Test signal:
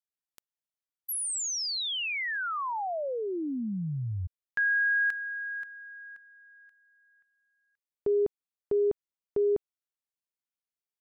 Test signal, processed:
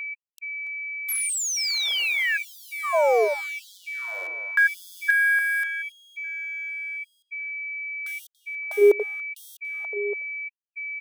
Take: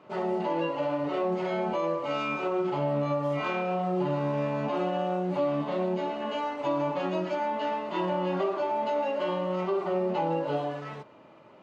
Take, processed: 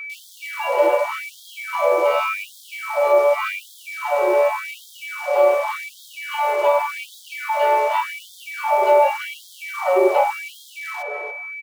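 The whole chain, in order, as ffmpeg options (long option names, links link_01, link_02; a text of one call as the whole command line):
ffmpeg -i in.wav -filter_complex "[0:a]acrossover=split=200|1200[link_01][link_02][link_03];[link_01]acompressor=threshold=-45dB:ratio=10:attack=13:release=27:detection=peak[link_04];[link_04][link_02][link_03]amix=inputs=3:normalize=0,acrusher=bits=8:dc=4:mix=0:aa=0.000001,asplit=2[link_05][link_06];[link_06]adelay=284,lowpass=frequency=1400:poles=1,volume=-4dB,asplit=2[link_07][link_08];[link_08]adelay=284,lowpass=frequency=1400:poles=1,volume=0.32,asplit=2[link_09][link_10];[link_10]adelay=284,lowpass=frequency=1400:poles=1,volume=0.32,asplit=2[link_11][link_12];[link_12]adelay=284,lowpass=frequency=1400:poles=1,volume=0.32[link_13];[link_07][link_09][link_11][link_13]amix=inputs=4:normalize=0[link_14];[link_05][link_14]amix=inputs=2:normalize=0,aeval=exprs='val(0)+0.0141*sin(2*PI*2300*n/s)':channel_layout=same,equalizer=frequency=550:width=0.38:gain=7.5,afftfilt=real='re*gte(b*sr/1024,340*pow(3200/340,0.5+0.5*sin(2*PI*0.87*pts/sr)))':imag='im*gte(b*sr/1024,340*pow(3200/340,0.5+0.5*sin(2*PI*0.87*pts/sr)))':win_size=1024:overlap=0.75,volume=5dB" out.wav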